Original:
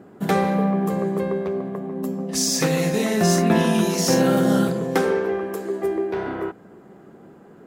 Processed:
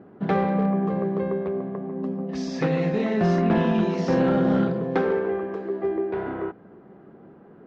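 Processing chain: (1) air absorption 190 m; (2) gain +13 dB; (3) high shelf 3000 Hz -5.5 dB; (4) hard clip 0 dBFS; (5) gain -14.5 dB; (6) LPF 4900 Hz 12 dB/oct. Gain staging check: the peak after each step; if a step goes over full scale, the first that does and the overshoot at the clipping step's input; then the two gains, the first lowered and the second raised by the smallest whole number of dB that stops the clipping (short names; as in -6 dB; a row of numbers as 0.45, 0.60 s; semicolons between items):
-7.0, +6.0, +6.0, 0.0, -14.5, -14.5 dBFS; step 2, 6.0 dB; step 2 +7 dB, step 5 -8.5 dB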